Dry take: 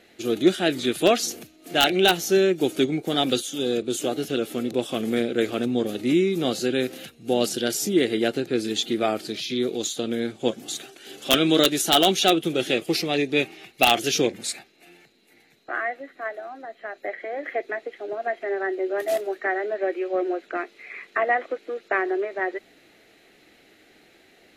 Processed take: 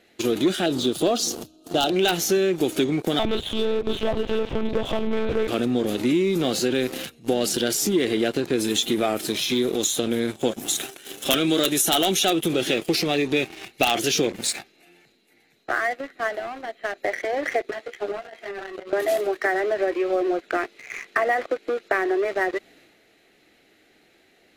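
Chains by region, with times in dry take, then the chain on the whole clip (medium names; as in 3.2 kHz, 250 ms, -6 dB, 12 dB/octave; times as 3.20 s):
0.66–1.96 s: Butterworth band-stop 2 kHz, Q 1.1 + treble shelf 10 kHz -10 dB
3.19–5.48 s: peaking EQ 800 Hz +6.5 dB 0.98 oct + hard clipper -18 dBFS + monotone LPC vocoder at 8 kHz 220 Hz
8.52–12.48 s: peaking EQ 12 kHz +8.5 dB 1.1 oct + band-stop 4.6 kHz, Q 8
17.71–18.93 s: high-pass 490 Hz 6 dB/octave + compressor with a negative ratio -34 dBFS + three-phase chorus
whole clip: transient shaper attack +1 dB, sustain +5 dB; waveshaping leveller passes 2; compression 3:1, threshold -21 dBFS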